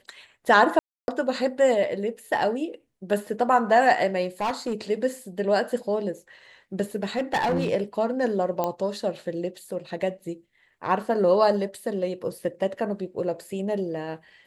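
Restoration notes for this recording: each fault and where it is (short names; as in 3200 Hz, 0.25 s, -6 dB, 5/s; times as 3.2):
0.79–1.08 gap 0.291 s
4.41–4.74 clipped -21.5 dBFS
7.03–7.69 clipped -19.5 dBFS
8.64 pop -13 dBFS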